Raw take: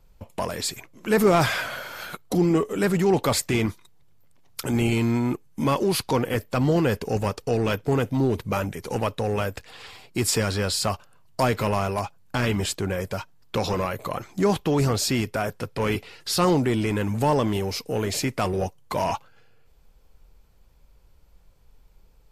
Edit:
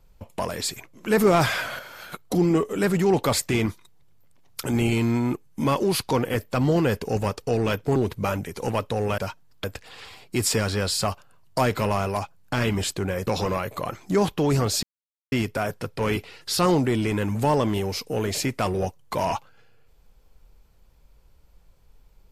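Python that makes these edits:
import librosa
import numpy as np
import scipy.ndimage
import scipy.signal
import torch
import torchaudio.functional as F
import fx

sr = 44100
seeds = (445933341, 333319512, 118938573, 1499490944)

y = fx.edit(x, sr, fx.clip_gain(start_s=1.79, length_s=0.33, db=-5.0),
    fx.cut(start_s=7.96, length_s=0.28),
    fx.move(start_s=13.09, length_s=0.46, to_s=9.46),
    fx.insert_silence(at_s=15.11, length_s=0.49), tone=tone)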